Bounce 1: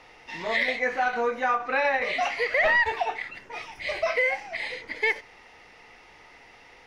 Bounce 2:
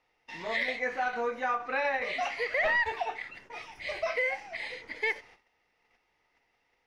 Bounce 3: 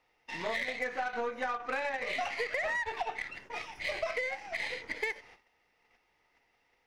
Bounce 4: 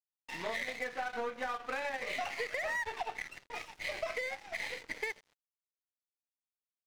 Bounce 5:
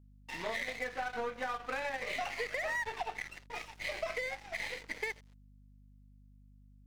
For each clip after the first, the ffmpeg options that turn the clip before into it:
-af "agate=range=0.141:threshold=0.00398:ratio=16:detection=peak,volume=0.531"
-af "acompressor=threshold=0.02:ratio=16,aeval=exprs='0.0473*(cos(1*acos(clip(val(0)/0.0473,-1,1)))-cos(1*PI/2))+0.0015*(cos(6*acos(clip(val(0)/0.0473,-1,1)))-cos(6*PI/2))+0.00188*(cos(7*acos(clip(val(0)/0.0473,-1,1)))-cos(7*PI/2))':c=same,volume=1.58"
-filter_complex "[0:a]asplit=2[s0][s1];[s1]alimiter=level_in=1.78:limit=0.0631:level=0:latency=1:release=422,volume=0.562,volume=0.891[s2];[s0][s2]amix=inputs=2:normalize=0,aeval=exprs='sgn(val(0))*max(abs(val(0))-0.00501,0)':c=same,volume=0.531"
-af "aeval=exprs='val(0)+0.00126*(sin(2*PI*50*n/s)+sin(2*PI*2*50*n/s)/2+sin(2*PI*3*50*n/s)/3+sin(2*PI*4*50*n/s)/4+sin(2*PI*5*50*n/s)/5)':c=same"

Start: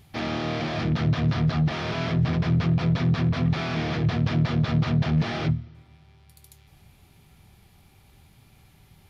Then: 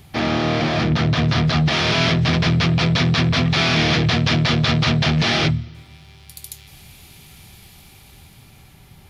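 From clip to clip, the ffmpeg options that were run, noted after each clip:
-filter_complex "[0:a]bandreject=f=50:t=h:w=6,bandreject=f=100:t=h:w=6,acrossover=split=420|2300[s0][s1][s2];[s0]alimiter=limit=0.0891:level=0:latency=1[s3];[s2]dynaudnorm=f=250:g=11:m=2.99[s4];[s3][s1][s4]amix=inputs=3:normalize=0,volume=2.66"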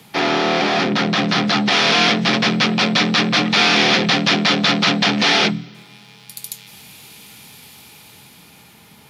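-af "lowshelf=f=210:g=-12,afreqshift=53,volume=1.78"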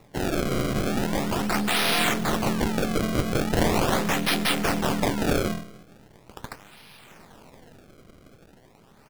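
-filter_complex "[0:a]aeval=exprs='if(lt(val(0),0),0.447*val(0),val(0))':c=same,asplit=2[s0][s1];[s1]adelay=134,lowpass=f=3200:p=1,volume=0.15,asplit=2[s2][s3];[s3]adelay=134,lowpass=f=3200:p=1,volume=0.32,asplit=2[s4][s5];[s5]adelay=134,lowpass=f=3200:p=1,volume=0.32[s6];[s0][s2][s4][s6]amix=inputs=4:normalize=0,acrusher=samples=28:mix=1:aa=0.000001:lfo=1:lforange=44.8:lforate=0.4,volume=0.531"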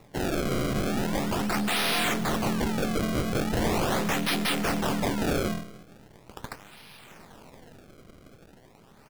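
-af "asoftclip=type=tanh:threshold=0.106"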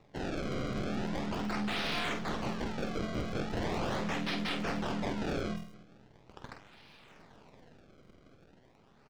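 -filter_complex "[0:a]acrossover=split=6600[s0][s1];[s0]asplit=2[s2][s3];[s3]adelay=48,volume=0.447[s4];[s2][s4]amix=inputs=2:normalize=0[s5];[s1]acrusher=samples=39:mix=1:aa=0.000001:lfo=1:lforange=23.4:lforate=0.23[s6];[s5][s6]amix=inputs=2:normalize=0,volume=0.376"

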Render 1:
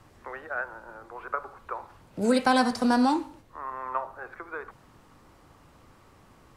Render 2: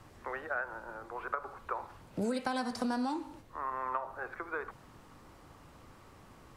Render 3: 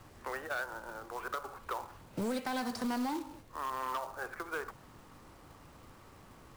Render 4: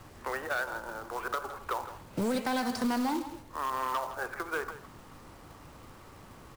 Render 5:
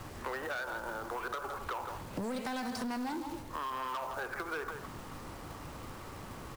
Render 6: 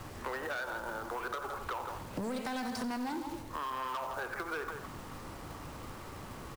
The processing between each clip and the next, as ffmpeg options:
-af "acompressor=threshold=0.0316:ratio=10"
-af "asoftclip=type=hard:threshold=0.0355,acrusher=bits=3:mode=log:mix=0:aa=0.000001"
-af "aecho=1:1:163:0.211,volume=1.68"
-af "asoftclip=type=tanh:threshold=0.0282,acompressor=threshold=0.00891:ratio=6,volume=1.88"
-af "aecho=1:1:90:0.188"

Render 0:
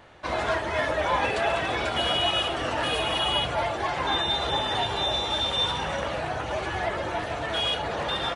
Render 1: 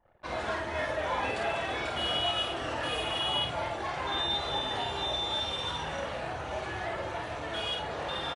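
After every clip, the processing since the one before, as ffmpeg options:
-filter_complex "[0:a]asplit=2[s0][s1];[s1]aecho=0:1:27|50:0.355|0.668[s2];[s0][s2]amix=inputs=2:normalize=0,anlmdn=0.0398,volume=0.398"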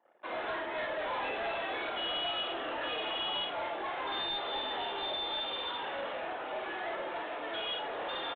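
-af "highpass=f=270:w=0.5412,highpass=f=270:w=1.3066,aresample=8000,asoftclip=type=tanh:threshold=0.0299,aresample=44100"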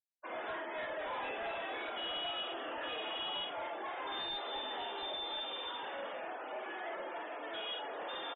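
-af "afftfilt=real='re*gte(hypot(re,im),0.00708)':imag='im*gte(hypot(re,im),0.00708)':win_size=1024:overlap=0.75,volume=0.596"

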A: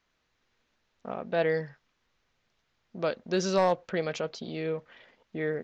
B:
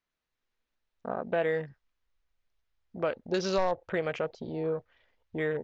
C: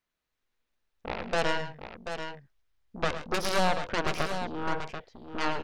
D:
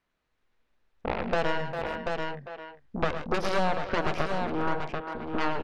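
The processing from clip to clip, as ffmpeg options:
-af "afwtdn=0.00891,asubboost=boost=11.5:cutoff=58,acompressor=threshold=0.0316:ratio=2.5,volume=1.5"
-af "aeval=exprs='0.15*(cos(1*acos(clip(val(0)/0.15,-1,1)))-cos(1*PI/2))+0.0376*(cos(4*acos(clip(val(0)/0.15,-1,1)))-cos(4*PI/2))+0.0531*(cos(7*acos(clip(val(0)/0.15,-1,1)))-cos(7*PI/2))+0.0119*(cos(8*acos(clip(val(0)/0.15,-1,1)))-cos(8*PI/2))':c=same,aecho=1:1:108|128|736:0.266|0.133|0.376,volume=0.794"
-filter_complex "[0:a]aemphasis=mode=reproduction:type=75fm,asplit=2[s0][s1];[s1]adelay=400,highpass=300,lowpass=3400,asoftclip=type=hard:threshold=0.0891,volume=0.251[s2];[s0][s2]amix=inputs=2:normalize=0,acompressor=threshold=0.0178:ratio=2,volume=2.51"

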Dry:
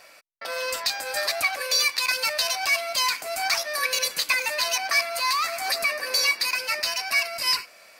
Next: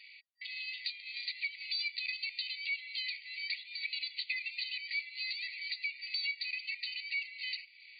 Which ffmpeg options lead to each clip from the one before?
-af "afftfilt=real='re*between(b*sr/4096,1900,4700)':imag='im*between(b*sr/4096,1900,4700)':win_size=4096:overlap=0.75,acompressor=threshold=0.00631:ratio=2"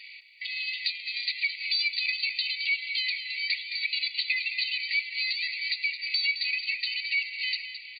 -af "aecho=1:1:216|432|648|864:0.316|0.126|0.0506|0.0202,volume=2.66"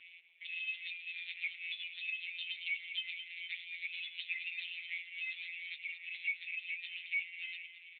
-af "aderivative,afftfilt=real='hypot(re,im)*cos(PI*b)':imag='0':win_size=1024:overlap=0.75,volume=1.88" -ar 8000 -c:a libopencore_amrnb -b:a 5900

